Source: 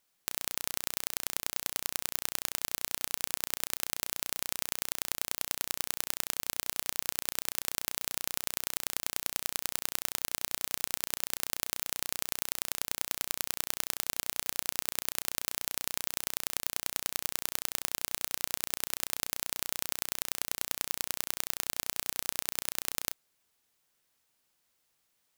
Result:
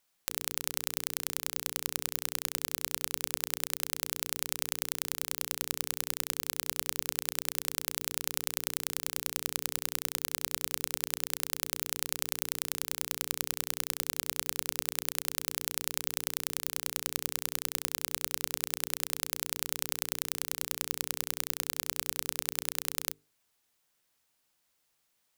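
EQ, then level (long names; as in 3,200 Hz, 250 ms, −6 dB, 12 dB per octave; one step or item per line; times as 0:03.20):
mains-hum notches 50/100/150/200/250/300/350/400/450/500 Hz
0.0 dB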